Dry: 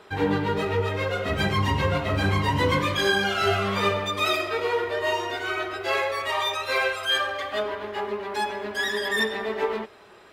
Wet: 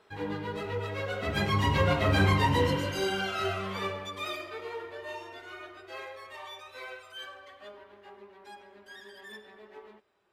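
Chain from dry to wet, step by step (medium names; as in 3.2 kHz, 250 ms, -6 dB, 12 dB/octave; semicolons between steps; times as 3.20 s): Doppler pass-by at 2.13 s, 9 m/s, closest 4.8 m; spectral replace 2.58–3.20 s, 1–3.7 kHz both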